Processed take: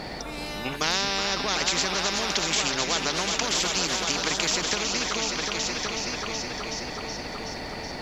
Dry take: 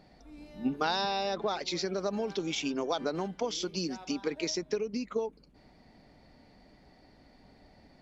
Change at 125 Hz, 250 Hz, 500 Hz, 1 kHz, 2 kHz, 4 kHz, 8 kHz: +6.5 dB, +1.0 dB, +1.5 dB, +6.0 dB, +14.0 dB, +13.0 dB, can't be measured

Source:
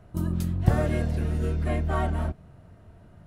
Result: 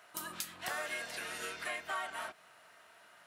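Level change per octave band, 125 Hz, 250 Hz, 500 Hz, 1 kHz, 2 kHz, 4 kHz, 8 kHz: −38.0, −26.0, −14.0, −6.5, +1.5, +4.5, +5.0 decibels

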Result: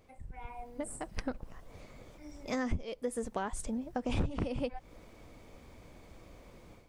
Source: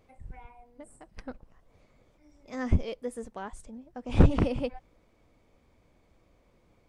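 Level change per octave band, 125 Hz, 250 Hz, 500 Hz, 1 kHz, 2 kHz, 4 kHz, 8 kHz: −11.0, −5.0, −3.5, −0.5, −0.5, −1.0, +8.0 decibels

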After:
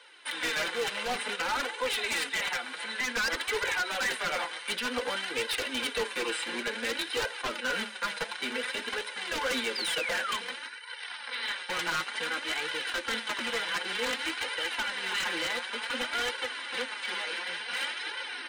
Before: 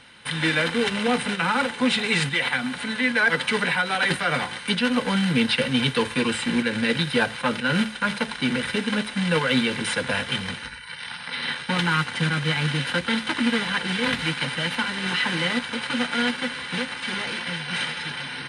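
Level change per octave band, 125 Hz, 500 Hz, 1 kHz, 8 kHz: −26.0, −7.5, −6.5, −2.0 decibels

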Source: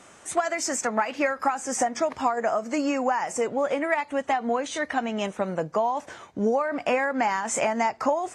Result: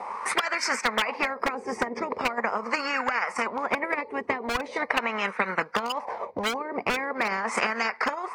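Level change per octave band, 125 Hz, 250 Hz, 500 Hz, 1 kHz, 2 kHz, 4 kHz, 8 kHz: −4.5, −6.0, −6.0, −2.0, +4.0, +6.0, −7.0 decibels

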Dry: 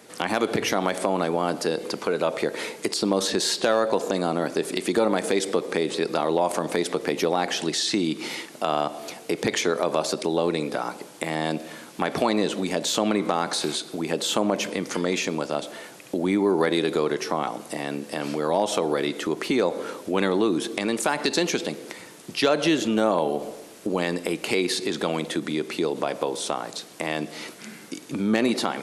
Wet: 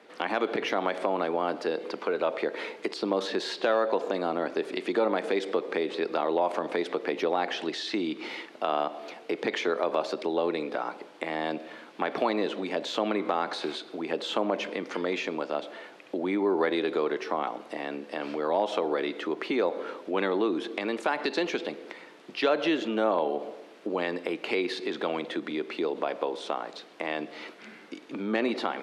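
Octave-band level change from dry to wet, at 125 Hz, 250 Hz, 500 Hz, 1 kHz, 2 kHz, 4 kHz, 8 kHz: −13.0, −6.0, −3.5, −3.0, −3.5, −7.5, −19.0 decibels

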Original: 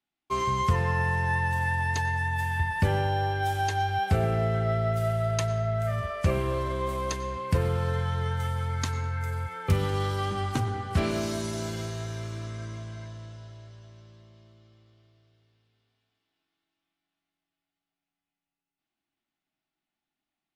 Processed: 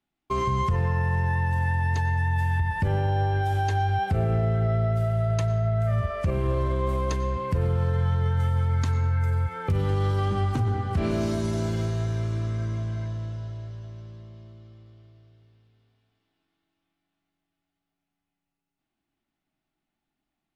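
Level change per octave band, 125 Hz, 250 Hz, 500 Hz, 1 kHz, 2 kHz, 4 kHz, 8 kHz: +4.5, +3.0, +0.5, −0.5, −2.5, −4.0, −5.5 decibels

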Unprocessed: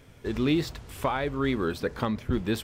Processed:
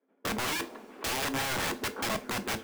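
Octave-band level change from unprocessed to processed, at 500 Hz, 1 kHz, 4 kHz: −7.5, −1.0, +4.0 decibels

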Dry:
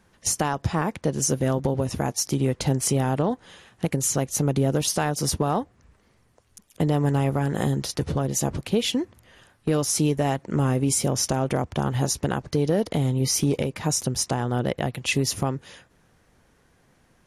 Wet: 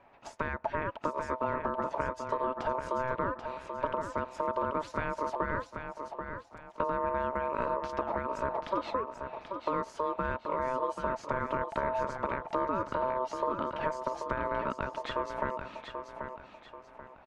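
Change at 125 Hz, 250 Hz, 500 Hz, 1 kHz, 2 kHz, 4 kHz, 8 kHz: −21.0 dB, −15.0 dB, −6.0 dB, 0.0 dB, −3.5 dB, −19.5 dB, below −30 dB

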